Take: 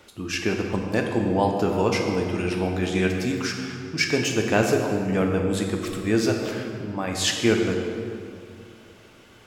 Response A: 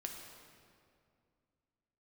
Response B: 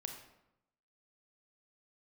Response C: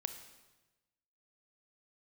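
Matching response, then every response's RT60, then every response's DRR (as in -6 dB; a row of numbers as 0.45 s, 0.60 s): A; 2.3 s, 0.85 s, 1.1 s; 1.5 dB, 3.5 dB, 8.0 dB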